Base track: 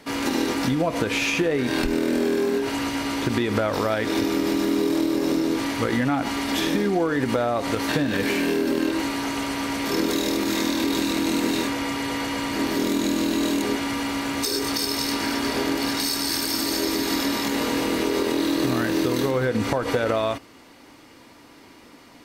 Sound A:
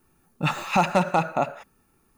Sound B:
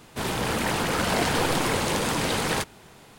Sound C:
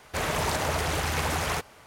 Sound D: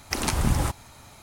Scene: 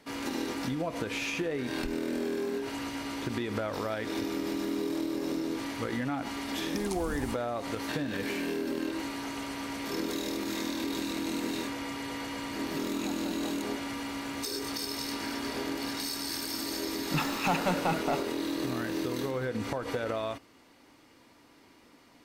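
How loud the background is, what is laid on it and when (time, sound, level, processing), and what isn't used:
base track −10 dB
0:06.63: mix in D −12 dB + phaser with its sweep stopped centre 470 Hz, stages 6
0:12.30: mix in A −7.5 dB + downward compressor 3 to 1, threshold −39 dBFS
0:16.71: mix in A −12 dB + leveller curve on the samples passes 2
not used: B, C

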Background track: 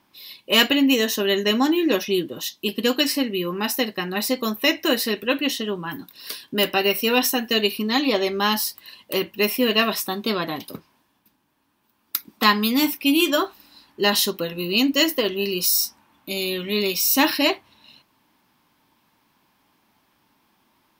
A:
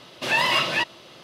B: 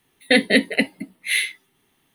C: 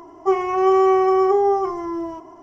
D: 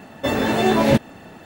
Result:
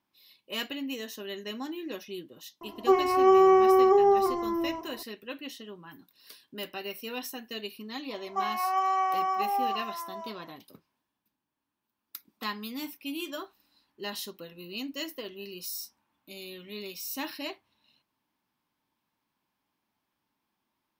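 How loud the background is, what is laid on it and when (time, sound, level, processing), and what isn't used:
background track −17.5 dB
0:02.61: mix in C −3.5 dB
0:08.10: mix in C −5.5 dB + Butterworth high-pass 590 Hz
not used: A, B, D

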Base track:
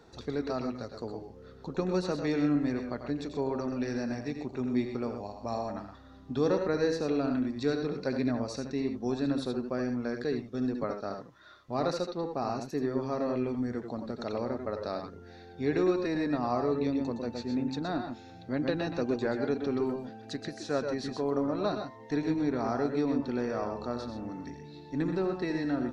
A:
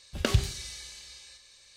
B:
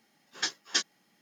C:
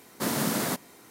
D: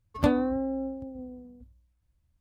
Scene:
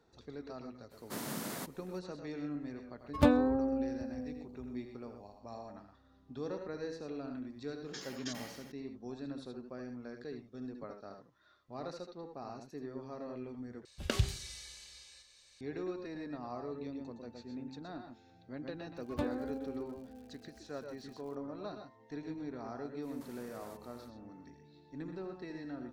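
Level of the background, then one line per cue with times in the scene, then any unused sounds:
base track −13 dB
0:00.90: mix in C −12.5 dB, fades 0.02 s
0:02.99: mix in D −2 dB
0:07.51: mix in B −18 dB + level that may fall only so fast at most 42 dB per second
0:13.85: overwrite with A −6.5 dB
0:18.95: mix in D −12.5 dB + surface crackle 170 per second −40 dBFS
0:23.01: mix in C −11.5 dB, fades 0.05 s + downward compressor 8 to 1, threshold −42 dBFS

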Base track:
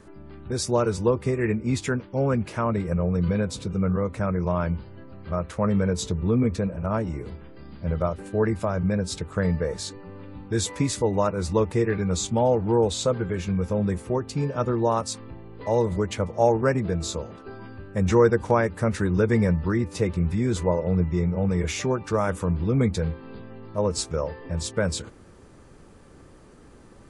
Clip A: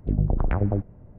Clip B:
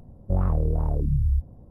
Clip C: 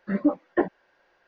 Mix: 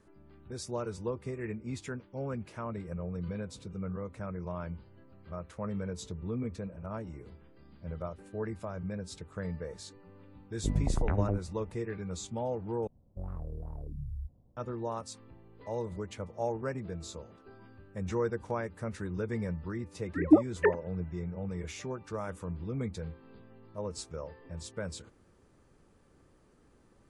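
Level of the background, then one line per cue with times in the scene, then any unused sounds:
base track −13.5 dB
0:10.57: mix in A −6.5 dB
0:12.87: overwrite with B −17 dB
0:20.07: mix in C + three sine waves on the formant tracks

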